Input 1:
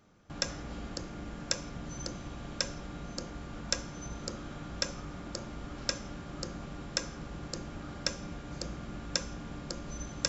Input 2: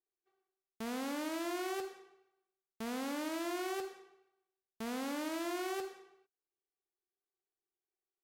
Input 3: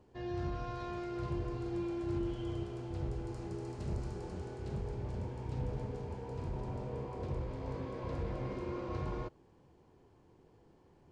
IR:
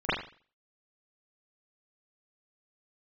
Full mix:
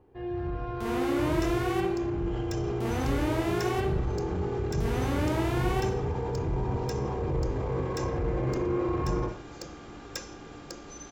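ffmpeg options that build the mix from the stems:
-filter_complex "[0:a]acrossover=split=190|3000[a][b][c];[a]acompressor=threshold=-53dB:ratio=6[d];[d][b][c]amix=inputs=3:normalize=0,asoftclip=type=tanh:threshold=-26dB,adelay=1000,volume=-0.5dB[e];[1:a]volume=-1.5dB,asplit=2[f][g];[g]volume=-5.5dB[h];[2:a]lowpass=2.3k,dynaudnorm=f=420:g=5:m=11dB,volume=1.5dB,asplit=2[i][j];[j]volume=-21.5dB[k];[e][i]amix=inputs=2:normalize=0,aecho=1:1:2.5:0.42,alimiter=limit=-24dB:level=0:latency=1:release=23,volume=0dB[l];[3:a]atrim=start_sample=2205[m];[h][k]amix=inputs=2:normalize=0[n];[n][m]afir=irnorm=-1:irlink=0[o];[f][l][o]amix=inputs=3:normalize=0"

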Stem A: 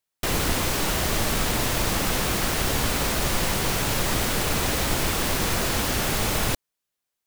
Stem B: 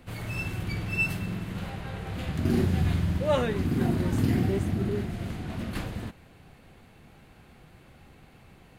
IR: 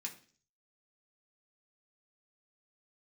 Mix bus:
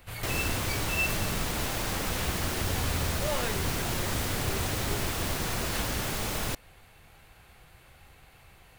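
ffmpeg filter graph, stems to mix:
-filter_complex "[0:a]volume=-7.5dB[a];[1:a]highshelf=f=9.9k:g=8.5,alimiter=limit=-22dB:level=0:latency=1,equalizer=f=230:t=o:w=1.8:g=-14,volume=2dB[b];[a][b]amix=inputs=2:normalize=0"

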